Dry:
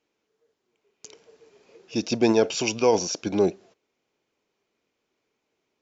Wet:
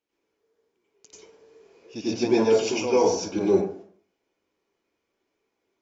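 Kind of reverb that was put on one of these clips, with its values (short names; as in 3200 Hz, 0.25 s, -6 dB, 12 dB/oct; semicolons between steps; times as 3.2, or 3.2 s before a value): plate-style reverb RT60 0.54 s, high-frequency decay 0.45×, pre-delay 80 ms, DRR -9 dB; gain -10 dB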